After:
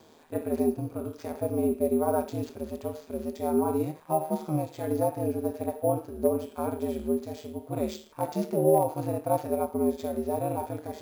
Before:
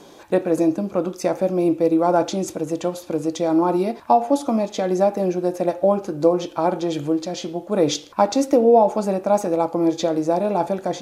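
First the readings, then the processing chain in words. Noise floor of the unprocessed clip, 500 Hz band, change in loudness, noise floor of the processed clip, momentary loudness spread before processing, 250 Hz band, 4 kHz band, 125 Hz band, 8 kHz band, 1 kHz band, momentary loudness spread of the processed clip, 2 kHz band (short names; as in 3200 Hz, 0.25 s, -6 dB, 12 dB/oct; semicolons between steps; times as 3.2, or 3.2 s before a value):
-43 dBFS, -8.5 dB, -9.0 dB, -53 dBFS, 8 LU, -9.0 dB, -17.0 dB, -4.0 dB, -10.0 dB, -10.0 dB, 10 LU, -12.5 dB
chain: ring modulator 78 Hz; careless resampling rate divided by 4×, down none, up hold; overloaded stage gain 7 dB; harmonic-percussive split percussive -14 dB; gain -3.5 dB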